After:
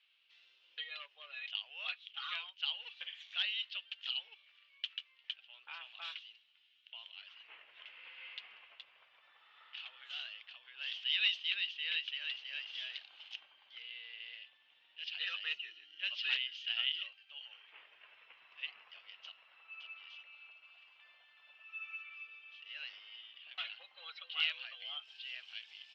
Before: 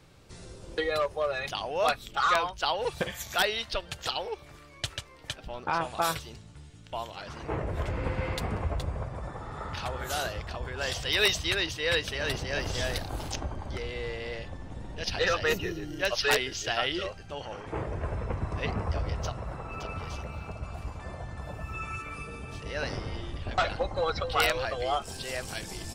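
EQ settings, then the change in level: ladder band-pass 3.2 kHz, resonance 70%; distance through air 320 m; +5.5 dB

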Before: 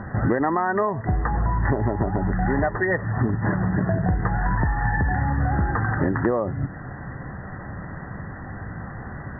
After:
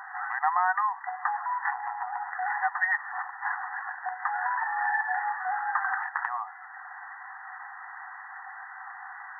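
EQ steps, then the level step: brick-wall FIR high-pass 720 Hz; 0.0 dB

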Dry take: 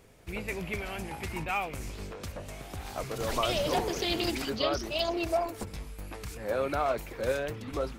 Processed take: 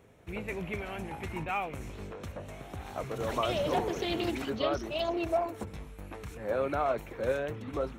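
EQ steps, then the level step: high-pass 60 Hz; peaking EQ 13 kHz -9.5 dB 2.6 oct; band-stop 4.8 kHz, Q 5.4; 0.0 dB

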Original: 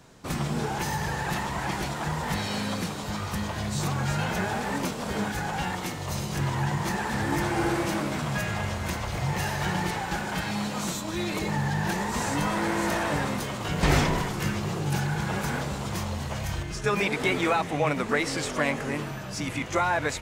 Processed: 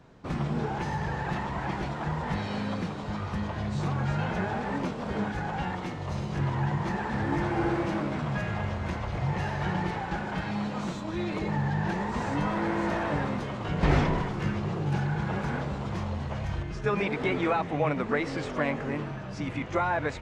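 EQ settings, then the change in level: tape spacing loss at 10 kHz 24 dB; 0.0 dB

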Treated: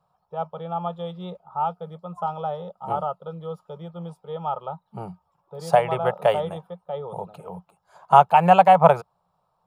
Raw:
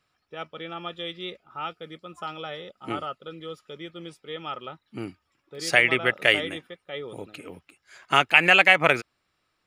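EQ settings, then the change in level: FFT filter 110 Hz 0 dB, 180 Hz +11 dB, 270 Hz -22 dB, 450 Hz +2 dB, 900 Hz +14 dB, 2 kHz -21 dB, 3.5 kHz -12 dB, 6.2 kHz -14 dB, 12 kHz -5 dB; +1.5 dB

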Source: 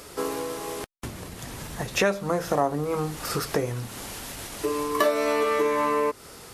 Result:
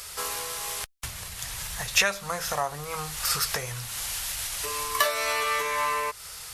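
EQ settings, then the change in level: amplifier tone stack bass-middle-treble 10-0-10; +8.0 dB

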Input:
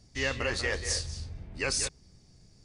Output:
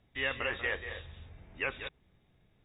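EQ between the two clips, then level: brick-wall FIR low-pass 3.8 kHz; distance through air 57 m; bass shelf 410 Hz -11 dB; 0.0 dB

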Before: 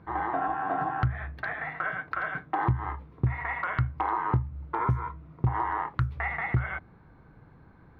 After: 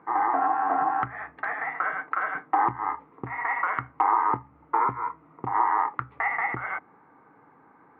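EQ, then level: cabinet simulation 260–2900 Hz, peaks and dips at 280 Hz +7 dB, 450 Hz +5 dB, 800 Hz +5 dB, 1.2 kHz +10 dB, 2 kHz +7 dB; peaking EQ 890 Hz +6.5 dB 0.32 oct; -2.5 dB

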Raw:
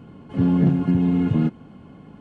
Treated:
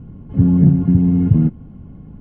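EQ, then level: tone controls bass +3 dB, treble -5 dB; tilt EQ -3 dB/octave; bass shelf 97 Hz +10.5 dB; -6.0 dB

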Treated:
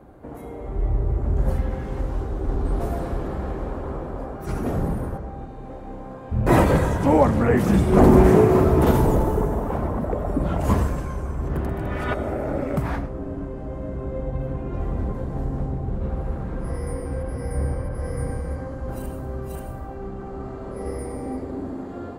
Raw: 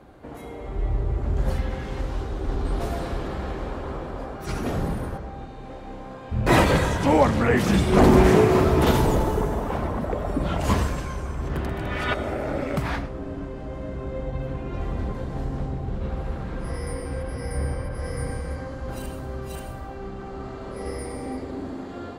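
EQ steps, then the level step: peaking EQ 3.8 kHz -12 dB 2.3 oct; +2.5 dB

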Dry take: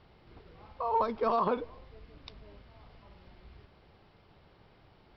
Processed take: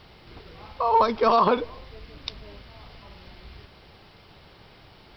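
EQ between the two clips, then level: treble shelf 2.6 kHz +11.5 dB; +8.0 dB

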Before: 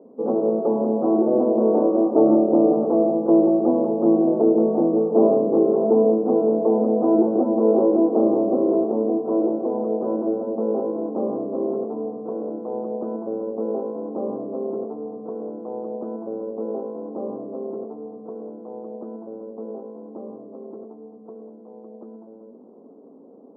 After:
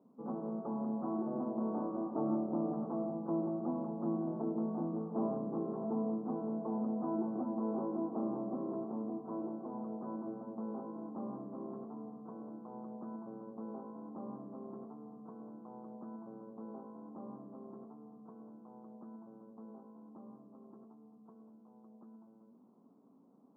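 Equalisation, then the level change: FFT filter 170 Hz 0 dB, 480 Hz -19 dB, 1.1 kHz 0 dB; -7.5 dB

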